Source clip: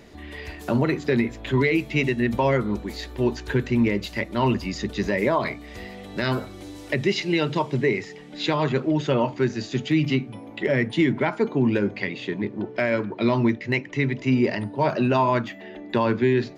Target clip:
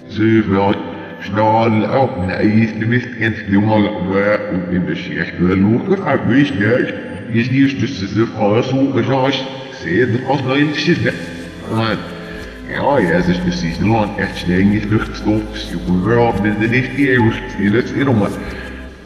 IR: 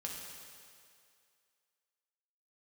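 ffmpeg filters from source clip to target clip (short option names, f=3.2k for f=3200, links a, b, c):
-filter_complex "[0:a]areverse,asetrate=38367,aresample=44100,asplit=2[a][b];[1:a]atrim=start_sample=2205[c];[b][c]afir=irnorm=-1:irlink=0,volume=-2dB[d];[a][d]amix=inputs=2:normalize=0,volume=4.5dB"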